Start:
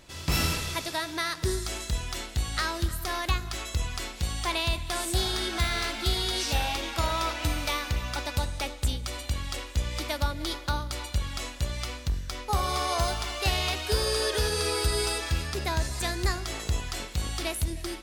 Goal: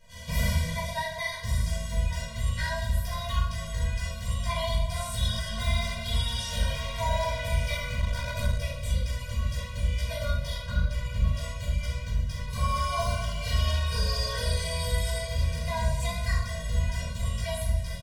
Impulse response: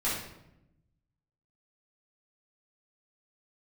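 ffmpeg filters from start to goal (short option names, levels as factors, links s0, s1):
-filter_complex "[1:a]atrim=start_sample=2205[s0];[0:a][s0]afir=irnorm=-1:irlink=0,asettb=1/sr,asplit=3[s1][s2][s3];[s1]atrim=end=7.994[s4];[s2]atrim=start=7.99:end=8.59,asetpts=PTS-STARTPTS,afade=t=in:d=0.004:c=qsin,afade=t=out:st=0.596:d=0.004:c=qsin,aeval=exprs='0.473*(cos(1*acos(clip(val(0)/0.473,-1,1)))-cos(1*PI/2))+0.0473*(cos(6*acos(clip(val(0)/0.473,-1,1)))-cos(6*PI/2))':c=same[s5];[s3]atrim=start=8.586[s6];[s4][s5]acrossfade=d=0.004:c1=hsin:c2=qsin[s7];[s7][s6]acrossfade=d=0.004:c1=qsin:c2=hsin,asettb=1/sr,asplit=3[s8][s9][s10];[s8]atrim=end=10.664[s11];[s9]atrim=start=10.66:end=11.35,asetpts=PTS-STARTPTS,afade=t=in:d=0.004:c=qsin,afade=t=out:st=0.686:d=0.004:c=qsin,bass=f=250:g=3,treble=f=4000:g=-6[s12];[s10]atrim=start=11.346[s13];[s11][s12]acrossfade=d=0.004:c1=hsin:c2=qsin[s14];[s14][s13]acrossfade=d=0.004:c1=qsin:c2=hsin,aecho=1:1:1143:0.188,afftfilt=real='re*eq(mod(floor(b*sr/1024/230),2),0)':imag='im*eq(mod(floor(b*sr/1024/230),2),0)':win_size=1024:overlap=0.75,volume=0.422"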